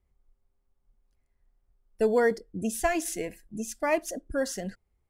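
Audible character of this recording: noise floor -75 dBFS; spectral tilt -4.0 dB/octave

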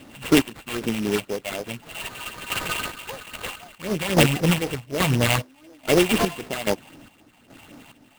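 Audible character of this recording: a buzz of ramps at a fixed pitch in blocks of 16 samples; chopped level 1.2 Hz, depth 65%, duty 50%; phasing stages 6, 3.9 Hz, lowest notch 370–2600 Hz; aliases and images of a low sample rate 5.6 kHz, jitter 20%

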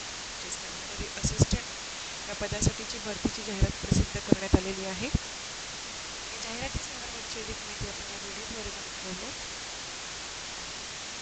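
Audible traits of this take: tremolo saw up 9.3 Hz, depth 35%; a quantiser's noise floor 6-bit, dither triangular; A-law

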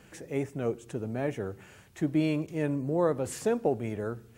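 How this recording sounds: noise floor -56 dBFS; spectral tilt -6.0 dB/octave

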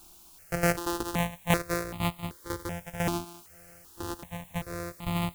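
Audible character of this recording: a buzz of ramps at a fixed pitch in blocks of 256 samples; tremolo saw down 2 Hz, depth 75%; a quantiser's noise floor 10-bit, dither triangular; notches that jump at a steady rate 2.6 Hz 510–1600 Hz

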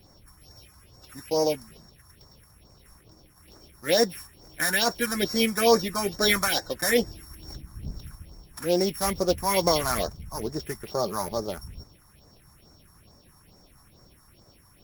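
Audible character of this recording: a buzz of ramps at a fixed pitch in blocks of 8 samples; phasing stages 4, 2.3 Hz, lowest notch 460–3000 Hz; Opus

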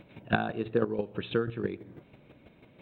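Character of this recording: chopped level 6.1 Hz, depth 60%, duty 15%

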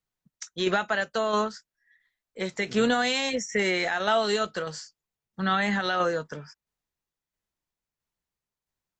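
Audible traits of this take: tremolo saw down 1.5 Hz, depth 40%

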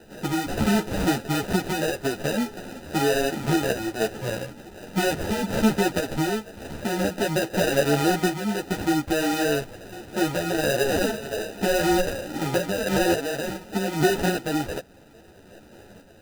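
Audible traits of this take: aliases and images of a low sample rate 1.1 kHz, jitter 0%; random-step tremolo 3.5 Hz; a shimmering, thickened sound

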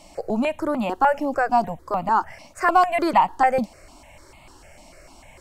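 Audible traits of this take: notches that jump at a steady rate 6.7 Hz 410–1600 Hz

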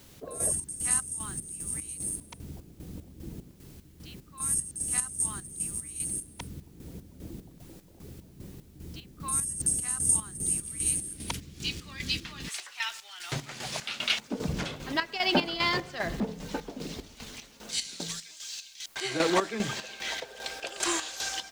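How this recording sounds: a quantiser's noise floor 10-bit, dither triangular; chopped level 2.5 Hz, depth 65%, duty 50%

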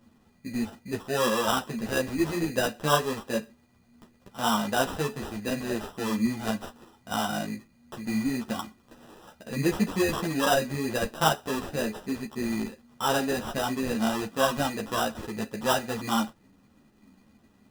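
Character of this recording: aliases and images of a low sample rate 2.2 kHz, jitter 0%; a shimmering, thickened sound

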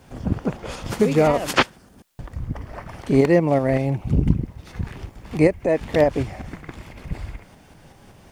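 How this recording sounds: tremolo saw up 5.3 Hz, depth 40%; a quantiser's noise floor 12-bit, dither triangular; Vorbis

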